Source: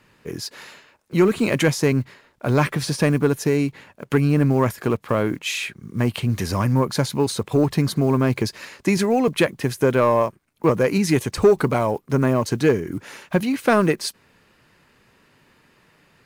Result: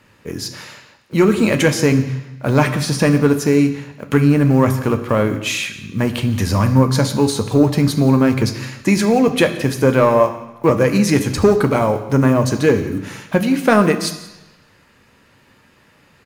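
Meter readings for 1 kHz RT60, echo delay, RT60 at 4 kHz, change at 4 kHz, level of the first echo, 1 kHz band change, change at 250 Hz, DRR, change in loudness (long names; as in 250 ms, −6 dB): 1.1 s, 173 ms, 1.1 s, +4.5 dB, −20.5 dB, +4.0 dB, +6.0 dB, 6.5 dB, +4.5 dB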